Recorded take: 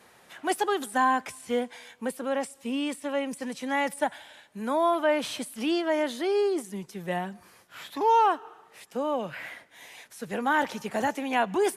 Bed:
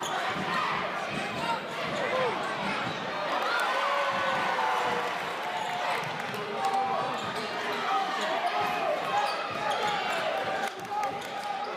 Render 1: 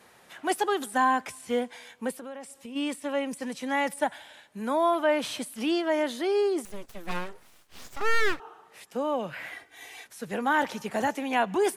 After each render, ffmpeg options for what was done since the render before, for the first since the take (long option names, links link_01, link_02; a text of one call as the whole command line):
ffmpeg -i in.wav -filter_complex "[0:a]asplit=3[link_01][link_02][link_03];[link_01]afade=type=out:start_time=2.18:duration=0.02[link_04];[link_02]acompressor=threshold=-38dB:ratio=6:attack=3.2:release=140:knee=1:detection=peak,afade=type=in:start_time=2.18:duration=0.02,afade=type=out:start_time=2.75:duration=0.02[link_05];[link_03]afade=type=in:start_time=2.75:duration=0.02[link_06];[link_04][link_05][link_06]amix=inputs=3:normalize=0,asettb=1/sr,asplit=3[link_07][link_08][link_09];[link_07]atrim=end=6.654[link_10];[link_08]atrim=start=6.65:end=8.4,asetpts=PTS-STARTPTS,afade=type=in:duration=0.004:curve=qsin,afade=type=out:start_time=1.746:duration=0.004:curve=qsin,aeval=exprs='abs(val(0))':channel_layout=same[link_11];[link_09]atrim=start=8.396[link_12];[link_10][link_11]acrossfade=duration=0.004:curve1=hsin:curve2=qsin[link_13];[link_13][link_12]acrossfade=duration=0.004:curve1=qsin:curve2=hsin,asettb=1/sr,asplit=3[link_14][link_15][link_16];[link_14]atrim=end=9.524[link_17];[link_15]atrim=start=9.52:end=10.07,asetpts=PTS-STARTPTS,afade=type=in:duration=0.004:curve=qsin,afade=type=out:start_time=0.546:duration=0.004:curve=qsin,aecho=1:1:2.6:0.82,atrim=end_sample=24255[link_18];[link_16]atrim=start=10.066[link_19];[link_17][link_18]acrossfade=duration=0.004:curve1=hsin:curve2=qsin[link_20];[link_20][link_19]acrossfade=duration=0.004:curve1=qsin:curve2=hsin" out.wav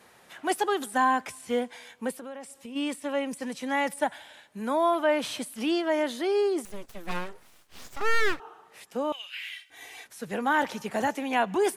ffmpeg -i in.wav -filter_complex "[0:a]asettb=1/sr,asplit=3[link_01][link_02][link_03];[link_01]atrim=end=9.124[link_04];[link_02]atrim=start=9.12:end=9.7,asetpts=PTS-STARTPTS,afade=type=in:duration=0.004:curve=qsin,afade=type=out:start_time=0.576:duration=0.004:curve=qsin,highpass=frequency=2900:width_type=q:width=3.9[link_05];[link_03]atrim=start=9.696[link_06];[link_04][link_05]acrossfade=duration=0.004:curve1=hsin:curve2=qsin[link_07];[link_07][link_06]acrossfade=duration=0.004:curve1=qsin:curve2=hsin" out.wav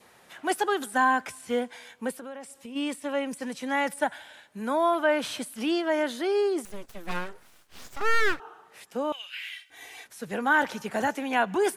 ffmpeg -i in.wav -af "adynamicequalizer=threshold=0.00447:dfrequency=1500:dqfactor=5.7:tfrequency=1500:tqfactor=5.7:attack=5:release=100:ratio=0.375:range=3:mode=boostabove:tftype=bell" out.wav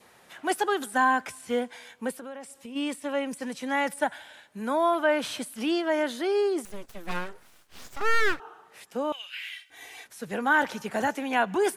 ffmpeg -i in.wav -af anull out.wav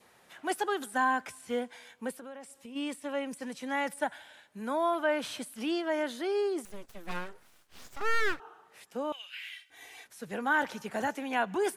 ffmpeg -i in.wav -af "volume=-5dB" out.wav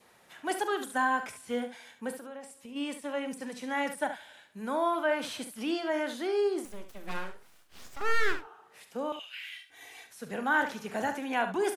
ffmpeg -i in.wav -af "aecho=1:1:42|71:0.251|0.316" out.wav